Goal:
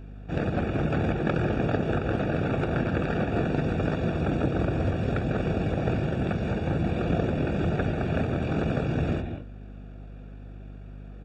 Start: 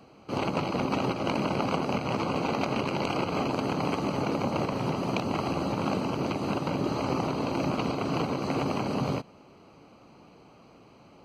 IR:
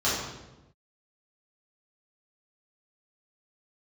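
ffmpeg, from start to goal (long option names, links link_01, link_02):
-filter_complex "[0:a]asplit=2[link_01][link_02];[1:a]atrim=start_sample=2205,atrim=end_sample=3969,adelay=148[link_03];[link_02][link_03]afir=irnorm=-1:irlink=0,volume=-20dB[link_04];[link_01][link_04]amix=inputs=2:normalize=0,asetrate=25476,aresample=44100,atempo=1.73107,aeval=exprs='val(0)+0.00708*(sin(2*PI*50*n/s)+sin(2*PI*2*50*n/s)/2+sin(2*PI*3*50*n/s)/3+sin(2*PI*4*50*n/s)/4+sin(2*PI*5*50*n/s)/5)':channel_layout=same,volume=2.5dB"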